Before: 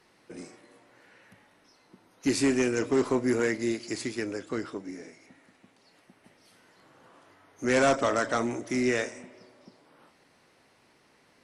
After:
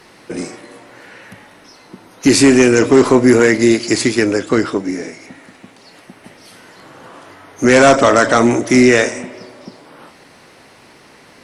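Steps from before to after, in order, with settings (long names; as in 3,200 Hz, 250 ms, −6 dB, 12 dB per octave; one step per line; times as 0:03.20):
boost into a limiter +19.5 dB
level −1 dB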